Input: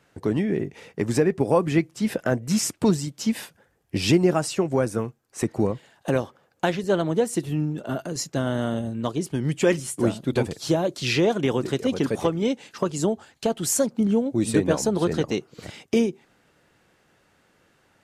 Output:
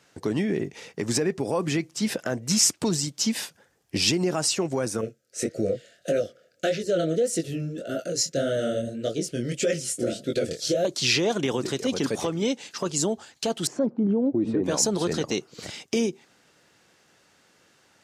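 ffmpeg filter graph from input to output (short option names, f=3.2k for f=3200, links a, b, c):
-filter_complex "[0:a]asettb=1/sr,asplit=3[a][b][c];[a]atrim=end=5.014[d];[b]atrim=start=5.01:end=10.85,asetpts=PTS-STARTPTS,afade=t=in:d=0.004:c=qsin,afade=t=out:st=5.836:d=0.004:c=qsin,equalizer=f=520:w=3.2:g=11,flanger=delay=18:depth=7.2:speed=1.7,asuperstop=centerf=950:order=12:qfactor=1.7[e];[c]atrim=start=10.846[f];[d][e]acrossfade=d=0.004:c1=hsin:c2=qsin[g];[g][f]acrossfade=d=0.004:c1=qsin:c2=hsin,asettb=1/sr,asplit=3[h][i][j];[h]atrim=end=13.674[k];[i]atrim=start=13.67:end=14.64,asetpts=PTS-STARTPTS,afade=t=in:d=0.004:c=qsin,afade=t=out:st=0.966:d=0.004:c=qsin,lowpass=1.2k,equalizer=f=320:t=o:w=1.2:g=7.5[l];[j]atrim=start=14.636[m];[k][l]acrossfade=d=0.004:c1=hsin:c2=qsin[n];[n][m]acrossfade=d=0.004:c1=qsin:c2=hsin,alimiter=limit=-15.5dB:level=0:latency=1:release=48,highpass=f=130:p=1,equalizer=f=5.7k:w=0.79:g=9"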